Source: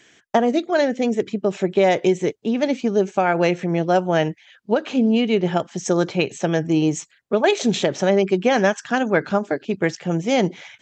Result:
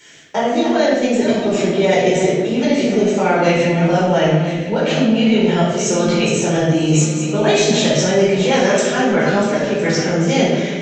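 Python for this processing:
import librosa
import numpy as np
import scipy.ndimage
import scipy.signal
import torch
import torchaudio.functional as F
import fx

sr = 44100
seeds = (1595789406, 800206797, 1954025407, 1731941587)

p1 = fx.reverse_delay_fb(x, sr, ms=506, feedback_pct=49, wet_db=-12.0)
p2 = fx.high_shelf(p1, sr, hz=3400.0, db=9.0)
p3 = fx.over_compress(p2, sr, threshold_db=-25.0, ratio=-1.0)
p4 = p2 + (p3 * librosa.db_to_amplitude(-2.0))
p5 = fx.room_shoebox(p4, sr, seeds[0], volume_m3=550.0, walls='mixed', distance_m=4.5)
y = p5 * librosa.db_to_amplitude(-10.0)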